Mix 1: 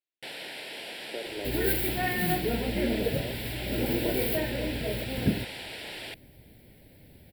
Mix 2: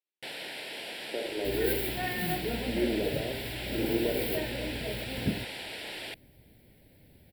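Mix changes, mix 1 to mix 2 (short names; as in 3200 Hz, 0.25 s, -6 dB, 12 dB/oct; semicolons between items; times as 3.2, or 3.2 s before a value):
second sound -4.5 dB; reverb: on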